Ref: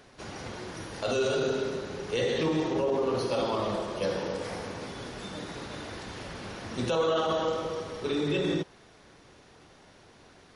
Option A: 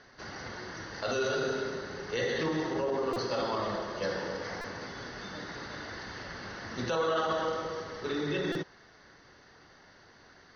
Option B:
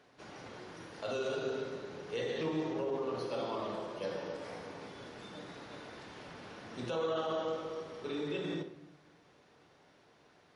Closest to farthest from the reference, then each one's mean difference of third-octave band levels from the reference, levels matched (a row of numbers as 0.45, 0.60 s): B, A; 2.0, 3.0 dB